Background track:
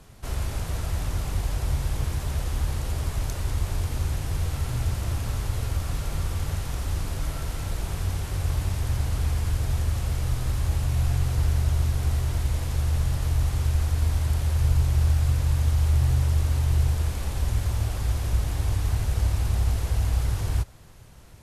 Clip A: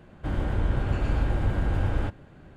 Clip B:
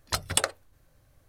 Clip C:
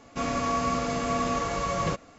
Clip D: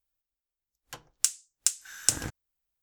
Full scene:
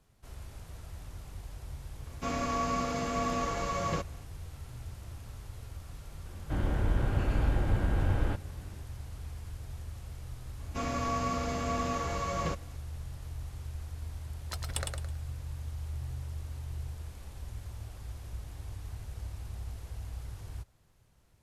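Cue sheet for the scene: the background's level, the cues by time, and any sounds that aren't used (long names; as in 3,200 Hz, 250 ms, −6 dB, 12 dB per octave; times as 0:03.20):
background track −17 dB
0:02.06: mix in C −4.5 dB
0:06.26: mix in A −3 dB
0:10.59: mix in C −5.5 dB
0:14.39: mix in B −12.5 dB + repeating echo 108 ms, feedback 31%, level −4 dB
not used: D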